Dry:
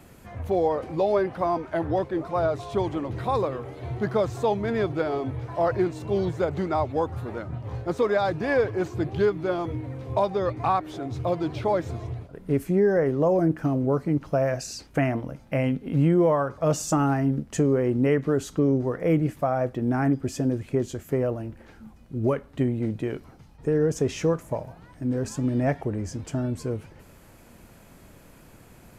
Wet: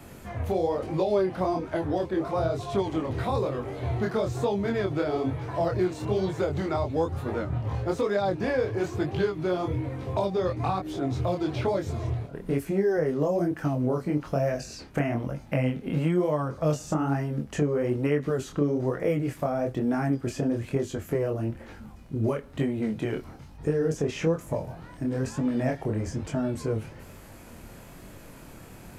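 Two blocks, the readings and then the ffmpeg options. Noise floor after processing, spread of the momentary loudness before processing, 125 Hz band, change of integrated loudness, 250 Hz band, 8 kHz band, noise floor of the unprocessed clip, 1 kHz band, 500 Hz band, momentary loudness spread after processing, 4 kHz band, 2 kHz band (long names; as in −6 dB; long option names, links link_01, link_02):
−46 dBFS, 10 LU, −1.5 dB, −2.5 dB, −2.0 dB, −5.0 dB, −51 dBFS, −4.0 dB, −2.5 dB, 8 LU, 0.0 dB, −2.0 dB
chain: -filter_complex "[0:a]acrossover=split=500|3100[link_01][link_02][link_03];[link_01]acompressor=threshold=-31dB:ratio=4[link_04];[link_02]acompressor=threshold=-37dB:ratio=4[link_05];[link_03]acompressor=threshold=-50dB:ratio=4[link_06];[link_04][link_05][link_06]amix=inputs=3:normalize=0,flanger=delay=20:depth=7.6:speed=1.1,volume=7.5dB"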